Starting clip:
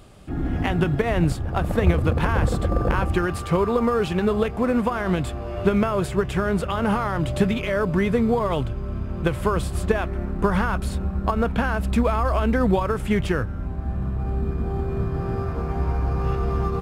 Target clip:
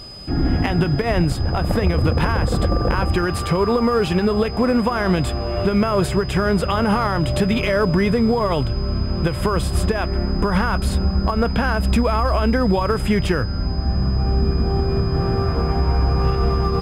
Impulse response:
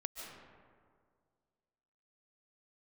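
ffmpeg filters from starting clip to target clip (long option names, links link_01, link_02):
-af "alimiter=limit=-15.5dB:level=0:latency=1:release=183,aeval=exprs='val(0)+0.00708*sin(2*PI*5000*n/s)':channel_layout=same,acontrast=76"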